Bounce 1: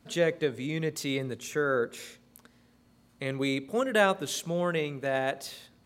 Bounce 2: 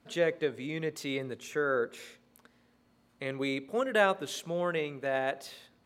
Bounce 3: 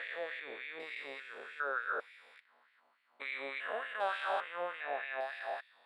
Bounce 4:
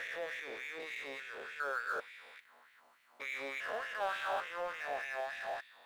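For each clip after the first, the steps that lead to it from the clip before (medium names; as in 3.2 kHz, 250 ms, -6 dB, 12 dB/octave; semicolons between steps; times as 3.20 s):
tone controls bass -6 dB, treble -6 dB; trim -1.5 dB
spectrogram pixelated in time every 400 ms; boxcar filter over 7 samples; LFO high-pass sine 3.4 Hz 720–2200 Hz
companding laws mixed up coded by mu; trim -3 dB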